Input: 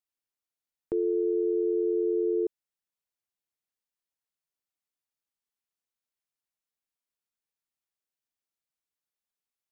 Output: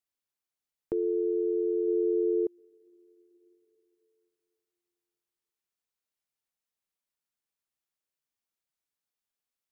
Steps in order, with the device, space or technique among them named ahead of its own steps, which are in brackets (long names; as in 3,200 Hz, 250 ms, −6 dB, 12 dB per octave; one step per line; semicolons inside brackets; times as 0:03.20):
0:00.93–0:01.88: low-shelf EQ 380 Hz −3.5 dB
compressed reverb return (on a send at −14 dB: convolution reverb RT60 2.6 s, pre-delay 102 ms + downward compressor 4 to 1, threshold −47 dBFS, peak gain reduction 16.5 dB)